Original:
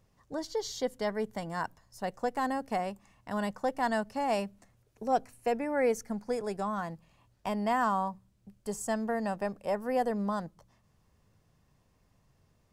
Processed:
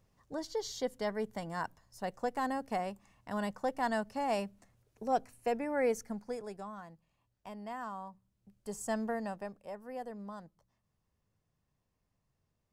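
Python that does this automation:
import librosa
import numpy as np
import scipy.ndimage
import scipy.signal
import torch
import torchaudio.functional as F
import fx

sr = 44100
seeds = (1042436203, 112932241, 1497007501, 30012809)

y = fx.gain(x, sr, db=fx.line((6.01, -3.0), (6.85, -13.5), (8.03, -13.5), (9.0, -2.0), (9.72, -13.0)))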